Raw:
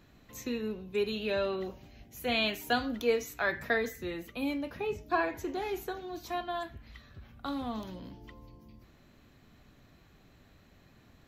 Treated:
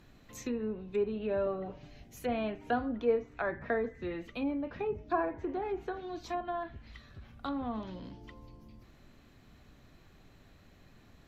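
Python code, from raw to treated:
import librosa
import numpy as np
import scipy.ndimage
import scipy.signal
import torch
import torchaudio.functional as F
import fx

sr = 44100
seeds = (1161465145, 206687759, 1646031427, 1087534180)

y = fx.dmg_noise_colour(x, sr, seeds[0], colour='brown', level_db=-63.0)
y = fx.env_lowpass_down(y, sr, base_hz=1100.0, full_db=-30.0)
y = fx.comb(y, sr, ms=6.8, depth=0.65, at=(1.46, 2.0))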